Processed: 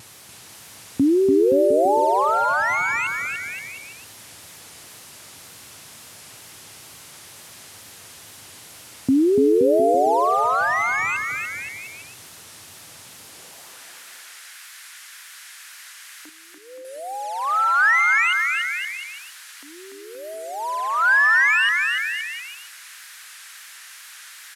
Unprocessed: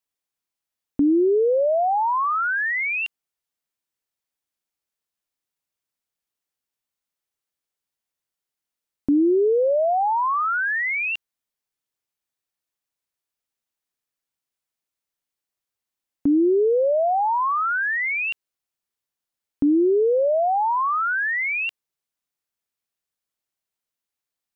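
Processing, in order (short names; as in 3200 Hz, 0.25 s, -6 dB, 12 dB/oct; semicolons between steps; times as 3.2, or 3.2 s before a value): delta modulation 64 kbps, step -38 dBFS; wow and flutter 120 cents; high-pass sweep 98 Hz -> 1600 Hz, 13–13.84; 16.29–16.85 vocal tract filter e; on a send: bouncing-ball echo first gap 0.29 s, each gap 0.8×, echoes 5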